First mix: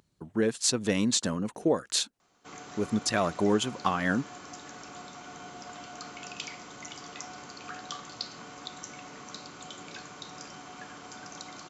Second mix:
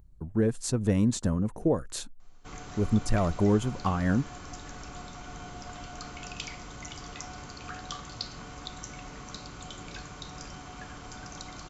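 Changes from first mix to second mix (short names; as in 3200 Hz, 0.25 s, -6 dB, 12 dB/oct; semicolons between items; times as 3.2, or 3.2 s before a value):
speech: add bell 3800 Hz -12.5 dB 2.4 oct; master: remove HPF 210 Hz 12 dB/oct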